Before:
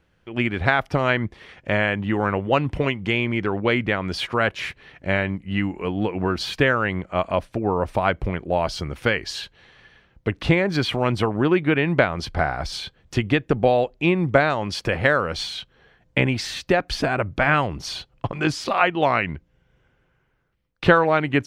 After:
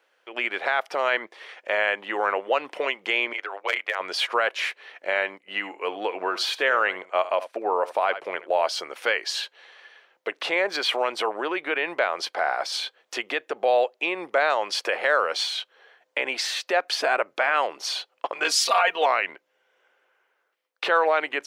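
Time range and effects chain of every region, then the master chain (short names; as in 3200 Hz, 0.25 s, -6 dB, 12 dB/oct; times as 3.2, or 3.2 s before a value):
3.33–4 HPF 630 Hz + overloaded stage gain 12 dB + AM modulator 93 Hz, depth 70%
5.38–8.67 gate -35 dBFS, range -7 dB + echo 75 ms -17 dB
18.44–19.06 high shelf 4700 Hz +10.5 dB + comb 4.3 ms, depth 87% + three-band expander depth 70%
whole clip: limiter -12.5 dBFS; HPF 470 Hz 24 dB/oct; gain +2.5 dB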